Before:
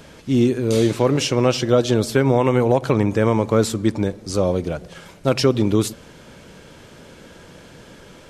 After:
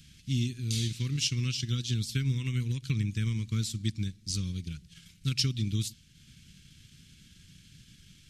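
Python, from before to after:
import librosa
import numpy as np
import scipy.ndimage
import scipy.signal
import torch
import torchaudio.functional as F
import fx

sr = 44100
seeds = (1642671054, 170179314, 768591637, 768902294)

y = fx.transient(x, sr, attack_db=3, sustain_db=-5)
y = fx.dynamic_eq(y, sr, hz=4700.0, q=0.71, threshold_db=-42.0, ratio=4.0, max_db=4)
y = scipy.signal.sosfilt(scipy.signal.cheby1(2, 1.0, [140.0, 3200.0], 'bandstop', fs=sr, output='sos'), y)
y = F.gain(torch.from_numpy(y), -6.5).numpy()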